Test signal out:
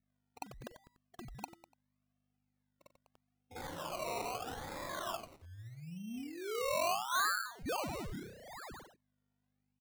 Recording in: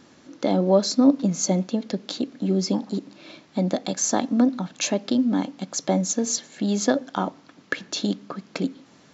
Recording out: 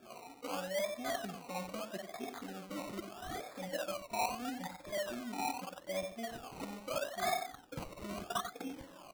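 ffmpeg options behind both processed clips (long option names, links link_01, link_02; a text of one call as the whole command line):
ffmpeg -i in.wav -filter_complex "[0:a]afftfilt=real='re*pow(10,24/40*sin(2*PI*(1.2*log(max(b,1)*sr/1024/100)/log(2)-(0.98)*(pts-256)/sr)))':imag='im*pow(10,24/40*sin(2*PI*(1.2*log(max(b,1)*sr/1024/100)/log(2)-(0.98)*(pts-256)/sr)))':win_size=1024:overlap=0.75,equalizer=frequency=89:width=1.3:gain=10,areverse,acompressor=threshold=-28dB:ratio=16,areverse,aeval=exprs='val(0)+0.001*(sin(2*PI*50*n/s)+sin(2*PI*2*50*n/s)/2+sin(2*PI*3*50*n/s)/3+sin(2*PI*4*50*n/s)/4+sin(2*PI*5*50*n/s)/5)':channel_layout=same,asplit=3[link_01][link_02][link_03];[link_01]bandpass=frequency=730:width_type=q:width=8,volume=0dB[link_04];[link_02]bandpass=frequency=1090:width_type=q:width=8,volume=-6dB[link_05];[link_03]bandpass=frequency=2440:width_type=q:width=8,volume=-9dB[link_06];[link_04][link_05][link_06]amix=inputs=3:normalize=0,acrossover=split=590|3300[link_07][link_08][link_09];[link_08]adelay=50[link_10];[link_09]adelay=250[link_11];[link_07][link_10][link_11]amix=inputs=3:normalize=0,asoftclip=type=tanh:threshold=-39.5dB,asplit=2[link_12][link_13];[link_13]aecho=0:1:92:0.355[link_14];[link_12][link_14]amix=inputs=2:normalize=0,acrusher=samples=21:mix=1:aa=0.000001:lfo=1:lforange=12.6:lforate=0.78,volume=10.5dB" out.wav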